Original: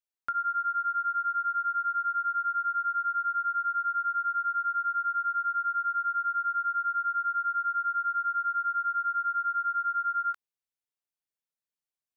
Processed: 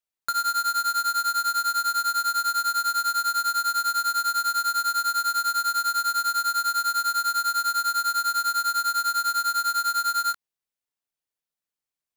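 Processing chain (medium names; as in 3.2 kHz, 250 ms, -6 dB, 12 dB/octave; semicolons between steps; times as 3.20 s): square wave that keeps the level; trim +1.5 dB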